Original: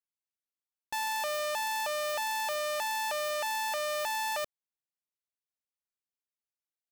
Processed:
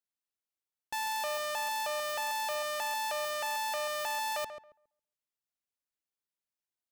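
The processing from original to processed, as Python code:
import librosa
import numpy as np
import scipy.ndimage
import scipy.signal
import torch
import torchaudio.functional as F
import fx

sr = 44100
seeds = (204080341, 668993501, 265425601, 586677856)

y = fx.echo_filtered(x, sr, ms=137, feedback_pct=22, hz=1600.0, wet_db=-8.5)
y = F.gain(torch.from_numpy(y), -1.5).numpy()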